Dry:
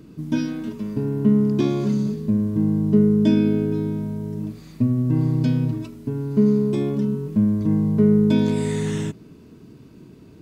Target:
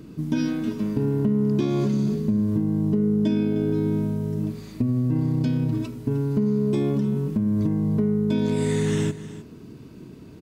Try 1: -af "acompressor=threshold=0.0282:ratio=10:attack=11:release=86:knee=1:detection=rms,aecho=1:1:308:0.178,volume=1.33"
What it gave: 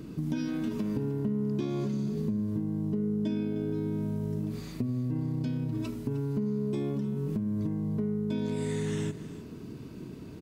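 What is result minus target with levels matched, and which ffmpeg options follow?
compression: peak gain reduction +8.5 dB
-af "acompressor=threshold=0.0841:ratio=10:attack=11:release=86:knee=1:detection=rms,aecho=1:1:308:0.178,volume=1.33"

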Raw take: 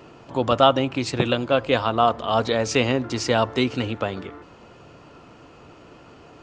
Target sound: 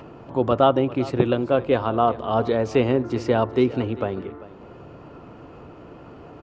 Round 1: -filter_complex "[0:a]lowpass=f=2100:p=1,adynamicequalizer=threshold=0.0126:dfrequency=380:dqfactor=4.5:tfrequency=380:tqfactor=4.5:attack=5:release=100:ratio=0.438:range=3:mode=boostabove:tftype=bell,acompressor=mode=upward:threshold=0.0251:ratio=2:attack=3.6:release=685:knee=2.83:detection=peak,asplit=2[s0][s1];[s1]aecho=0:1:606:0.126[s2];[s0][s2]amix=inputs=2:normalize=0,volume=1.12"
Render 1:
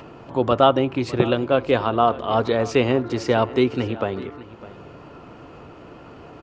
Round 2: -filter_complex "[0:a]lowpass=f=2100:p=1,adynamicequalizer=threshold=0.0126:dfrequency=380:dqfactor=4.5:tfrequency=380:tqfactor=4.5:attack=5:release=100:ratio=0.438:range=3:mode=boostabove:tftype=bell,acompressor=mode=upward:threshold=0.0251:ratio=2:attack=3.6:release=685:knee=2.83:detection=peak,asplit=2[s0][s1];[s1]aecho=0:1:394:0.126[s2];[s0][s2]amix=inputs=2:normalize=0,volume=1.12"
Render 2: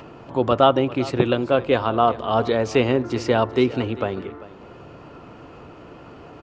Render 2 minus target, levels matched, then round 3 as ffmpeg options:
2 kHz band +3.5 dB
-filter_complex "[0:a]lowpass=f=930:p=1,adynamicequalizer=threshold=0.0126:dfrequency=380:dqfactor=4.5:tfrequency=380:tqfactor=4.5:attack=5:release=100:ratio=0.438:range=3:mode=boostabove:tftype=bell,acompressor=mode=upward:threshold=0.0251:ratio=2:attack=3.6:release=685:knee=2.83:detection=peak,asplit=2[s0][s1];[s1]aecho=0:1:394:0.126[s2];[s0][s2]amix=inputs=2:normalize=0,volume=1.12"

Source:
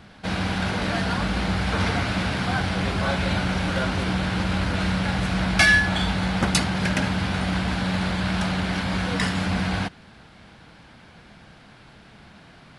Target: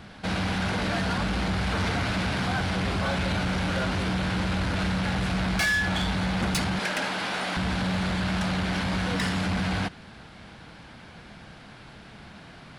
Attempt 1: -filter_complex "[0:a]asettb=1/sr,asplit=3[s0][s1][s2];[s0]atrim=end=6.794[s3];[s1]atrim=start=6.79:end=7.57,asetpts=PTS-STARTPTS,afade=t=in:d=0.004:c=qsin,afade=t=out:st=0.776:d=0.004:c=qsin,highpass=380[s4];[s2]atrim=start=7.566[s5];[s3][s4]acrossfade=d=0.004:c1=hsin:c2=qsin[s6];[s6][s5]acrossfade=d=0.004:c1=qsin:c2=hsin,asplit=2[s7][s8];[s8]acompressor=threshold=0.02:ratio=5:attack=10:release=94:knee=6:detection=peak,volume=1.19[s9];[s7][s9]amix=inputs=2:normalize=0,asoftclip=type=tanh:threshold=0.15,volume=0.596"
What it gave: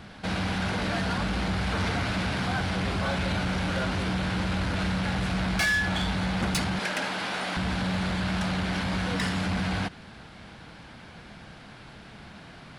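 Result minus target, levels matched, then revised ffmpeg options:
compression: peak gain reduction +5.5 dB
-filter_complex "[0:a]asettb=1/sr,asplit=3[s0][s1][s2];[s0]atrim=end=6.794[s3];[s1]atrim=start=6.79:end=7.57,asetpts=PTS-STARTPTS,afade=t=in:d=0.004:c=qsin,afade=t=out:st=0.776:d=0.004:c=qsin,highpass=380[s4];[s2]atrim=start=7.566[s5];[s3][s4]acrossfade=d=0.004:c1=hsin:c2=qsin[s6];[s6][s5]acrossfade=d=0.004:c1=qsin:c2=hsin,asplit=2[s7][s8];[s8]acompressor=threshold=0.0447:ratio=5:attack=10:release=94:knee=6:detection=peak,volume=1.19[s9];[s7][s9]amix=inputs=2:normalize=0,asoftclip=type=tanh:threshold=0.15,volume=0.596"

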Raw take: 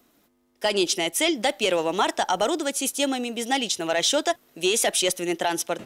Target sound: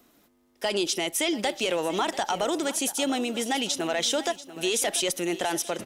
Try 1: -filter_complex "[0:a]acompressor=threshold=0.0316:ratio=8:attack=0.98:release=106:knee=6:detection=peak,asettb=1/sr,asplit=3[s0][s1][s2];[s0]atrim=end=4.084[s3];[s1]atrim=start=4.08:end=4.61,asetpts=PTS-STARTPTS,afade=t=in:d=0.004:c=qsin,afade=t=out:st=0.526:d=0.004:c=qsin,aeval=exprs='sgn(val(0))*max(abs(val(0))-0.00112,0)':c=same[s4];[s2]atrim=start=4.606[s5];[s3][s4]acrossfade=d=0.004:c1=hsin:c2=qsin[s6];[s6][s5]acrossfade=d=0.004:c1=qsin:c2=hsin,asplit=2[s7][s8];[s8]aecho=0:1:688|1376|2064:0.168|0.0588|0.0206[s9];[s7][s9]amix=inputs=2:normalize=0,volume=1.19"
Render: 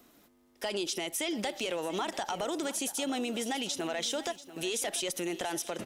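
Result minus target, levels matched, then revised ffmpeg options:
compression: peak gain reduction +7.5 dB
-filter_complex "[0:a]acompressor=threshold=0.0841:ratio=8:attack=0.98:release=106:knee=6:detection=peak,asettb=1/sr,asplit=3[s0][s1][s2];[s0]atrim=end=4.084[s3];[s1]atrim=start=4.08:end=4.61,asetpts=PTS-STARTPTS,afade=t=in:d=0.004:c=qsin,afade=t=out:st=0.526:d=0.004:c=qsin,aeval=exprs='sgn(val(0))*max(abs(val(0))-0.00112,0)':c=same[s4];[s2]atrim=start=4.606[s5];[s3][s4]acrossfade=d=0.004:c1=hsin:c2=qsin[s6];[s6][s5]acrossfade=d=0.004:c1=qsin:c2=hsin,asplit=2[s7][s8];[s8]aecho=0:1:688|1376|2064:0.168|0.0588|0.0206[s9];[s7][s9]amix=inputs=2:normalize=0,volume=1.19"

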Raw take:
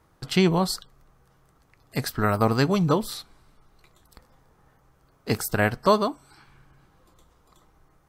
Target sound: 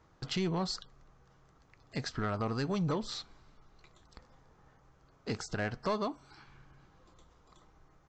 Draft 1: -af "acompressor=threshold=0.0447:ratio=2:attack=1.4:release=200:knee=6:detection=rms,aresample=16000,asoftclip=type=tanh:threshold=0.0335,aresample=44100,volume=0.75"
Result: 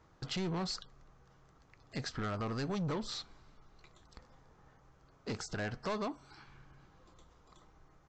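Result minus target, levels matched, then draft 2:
saturation: distortion +7 dB
-af "acompressor=threshold=0.0447:ratio=2:attack=1.4:release=200:knee=6:detection=rms,aresample=16000,asoftclip=type=tanh:threshold=0.0794,aresample=44100,volume=0.75"

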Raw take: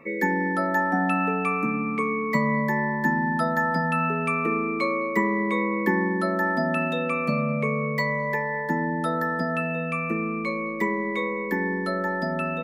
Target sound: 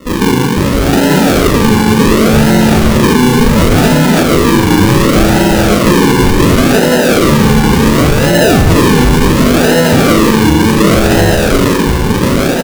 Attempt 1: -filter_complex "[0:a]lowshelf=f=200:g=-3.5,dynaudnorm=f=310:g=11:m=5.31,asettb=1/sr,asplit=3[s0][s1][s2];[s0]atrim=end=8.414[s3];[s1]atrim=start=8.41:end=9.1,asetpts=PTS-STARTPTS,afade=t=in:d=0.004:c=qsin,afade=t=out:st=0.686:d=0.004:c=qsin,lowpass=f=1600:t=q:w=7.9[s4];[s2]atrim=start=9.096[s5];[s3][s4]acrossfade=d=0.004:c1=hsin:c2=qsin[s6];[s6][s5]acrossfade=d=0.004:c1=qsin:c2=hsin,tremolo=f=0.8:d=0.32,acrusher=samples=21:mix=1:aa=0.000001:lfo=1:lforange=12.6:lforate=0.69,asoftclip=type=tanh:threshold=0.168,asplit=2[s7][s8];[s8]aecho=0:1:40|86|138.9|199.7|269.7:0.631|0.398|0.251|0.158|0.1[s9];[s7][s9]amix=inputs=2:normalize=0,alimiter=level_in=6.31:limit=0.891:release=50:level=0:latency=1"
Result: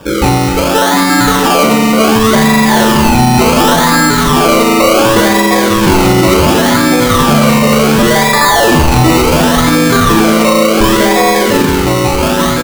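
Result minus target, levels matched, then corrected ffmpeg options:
decimation with a swept rate: distortion -8 dB
-filter_complex "[0:a]lowshelf=f=200:g=-3.5,dynaudnorm=f=310:g=11:m=5.31,asettb=1/sr,asplit=3[s0][s1][s2];[s0]atrim=end=8.414[s3];[s1]atrim=start=8.41:end=9.1,asetpts=PTS-STARTPTS,afade=t=in:d=0.004:c=qsin,afade=t=out:st=0.686:d=0.004:c=qsin,lowpass=f=1600:t=q:w=7.9[s4];[s2]atrim=start=9.096[s5];[s3][s4]acrossfade=d=0.004:c1=hsin:c2=qsin[s6];[s6][s5]acrossfade=d=0.004:c1=qsin:c2=hsin,tremolo=f=0.8:d=0.32,acrusher=samples=54:mix=1:aa=0.000001:lfo=1:lforange=32.4:lforate=0.69,asoftclip=type=tanh:threshold=0.168,asplit=2[s7][s8];[s8]aecho=0:1:40|86|138.9|199.7|269.7:0.631|0.398|0.251|0.158|0.1[s9];[s7][s9]amix=inputs=2:normalize=0,alimiter=level_in=6.31:limit=0.891:release=50:level=0:latency=1"

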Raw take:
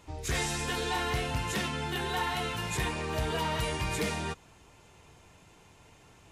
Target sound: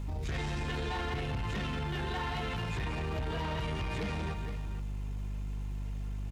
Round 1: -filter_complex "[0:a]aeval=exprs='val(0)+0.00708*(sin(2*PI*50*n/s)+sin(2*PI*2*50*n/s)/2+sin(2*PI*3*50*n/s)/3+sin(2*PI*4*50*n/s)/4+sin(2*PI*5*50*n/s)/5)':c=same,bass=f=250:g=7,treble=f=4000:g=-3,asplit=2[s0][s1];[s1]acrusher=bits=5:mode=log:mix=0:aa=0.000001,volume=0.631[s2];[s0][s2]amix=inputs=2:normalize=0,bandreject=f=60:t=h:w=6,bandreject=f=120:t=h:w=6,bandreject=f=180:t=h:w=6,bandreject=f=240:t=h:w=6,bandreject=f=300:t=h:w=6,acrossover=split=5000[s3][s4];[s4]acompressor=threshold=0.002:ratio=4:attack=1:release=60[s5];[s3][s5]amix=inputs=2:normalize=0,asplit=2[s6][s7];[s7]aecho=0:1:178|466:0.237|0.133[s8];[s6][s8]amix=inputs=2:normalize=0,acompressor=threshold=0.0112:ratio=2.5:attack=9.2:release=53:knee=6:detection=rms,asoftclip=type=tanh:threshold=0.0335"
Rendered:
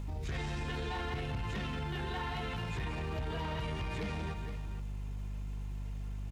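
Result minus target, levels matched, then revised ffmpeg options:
compression: peak gain reduction +4 dB
-filter_complex "[0:a]aeval=exprs='val(0)+0.00708*(sin(2*PI*50*n/s)+sin(2*PI*2*50*n/s)/2+sin(2*PI*3*50*n/s)/3+sin(2*PI*4*50*n/s)/4+sin(2*PI*5*50*n/s)/5)':c=same,bass=f=250:g=7,treble=f=4000:g=-3,asplit=2[s0][s1];[s1]acrusher=bits=5:mode=log:mix=0:aa=0.000001,volume=0.631[s2];[s0][s2]amix=inputs=2:normalize=0,bandreject=f=60:t=h:w=6,bandreject=f=120:t=h:w=6,bandreject=f=180:t=h:w=6,bandreject=f=240:t=h:w=6,bandreject=f=300:t=h:w=6,acrossover=split=5000[s3][s4];[s4]acompressor=threshold=0.002:ratio=4:attack=1:release=60[s5];[s3][s5]amix=inputs=2:normalize=0,asplit=2[s6][s7];[s7]aecho=0:1:178|466:0.237|0.133[s8];[s6][s8]amix=inputs=2:normalize=0,acompressor=threshold=0.0237:ratio=2.5:attack=9.2:release=53:knee=6:detection=rms,asoftclip=type=tanh:threshold=0.0335"

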